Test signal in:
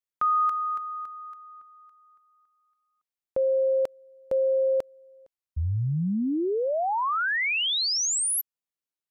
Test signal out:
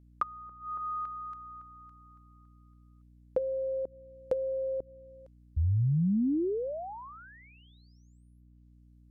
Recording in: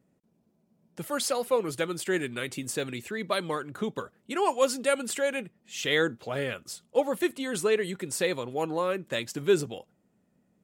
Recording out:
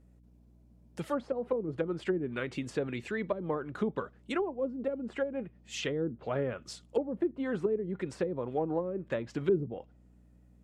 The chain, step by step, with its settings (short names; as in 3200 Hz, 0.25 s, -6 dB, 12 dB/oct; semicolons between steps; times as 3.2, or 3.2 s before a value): hum 60 Hz, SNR 30 dB; treble ducked by the level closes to 320 Hz, closed at -23.5 dBFS